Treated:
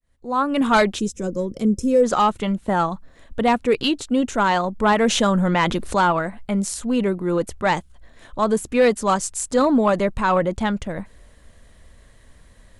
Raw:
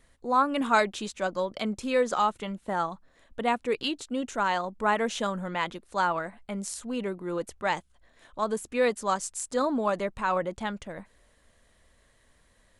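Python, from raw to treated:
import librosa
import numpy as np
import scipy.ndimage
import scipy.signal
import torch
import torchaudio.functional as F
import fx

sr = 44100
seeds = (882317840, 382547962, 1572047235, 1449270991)

y = fx.fade_in_head(x, sr, length_s=0.8)
y = fx.fold_sine(y, sr, drive_db=4, ceiling_db=-10.5)
y = fx.spec_box(y, sr, start_s=0.99, length_s=1.05, low_hz=540.0, high_hz=5000.0, gain_db=-16)
y = fx.low_shelf(y, sr, hz=240.0, db=9.0)
y = fx.env_flatten(y, sr, amount_pct=50, at=(5.03, 6.11))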